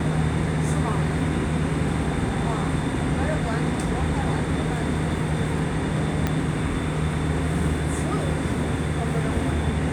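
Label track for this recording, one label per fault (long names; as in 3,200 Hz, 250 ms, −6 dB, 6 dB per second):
6.270000	6.270000	click −9 dBFS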